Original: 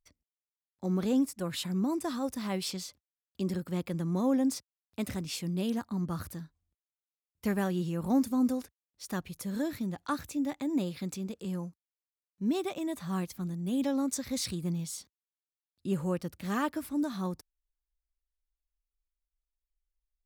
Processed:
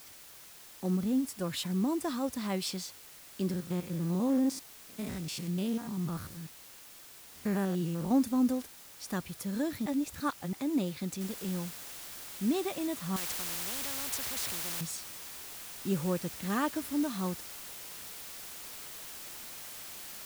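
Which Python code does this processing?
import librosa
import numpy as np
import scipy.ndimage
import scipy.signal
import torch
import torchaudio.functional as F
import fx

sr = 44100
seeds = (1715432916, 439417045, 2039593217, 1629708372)

y = fx.spec_box(x, sr, start_s=0.96, length_s=0.29, low_hz=270.0, high_hz=11000.0, gain_db=-9)
y = fx.spec_steps(y, sr, hold_ms=100, at=(3.51, 8.11))
y = fx.noise_floor_step(y, sr, seeds[0], at_s=11.21, before_db=-52, after_db=-45, tilt_db=0.0)
y = fx.spectral_comp(y, sr, ratio=4.0, at=(13.16, 14.81))
y = fx.edit(y, sr, fx.reverse_span(start_s=9.86, length_s=0.67), tone=tone)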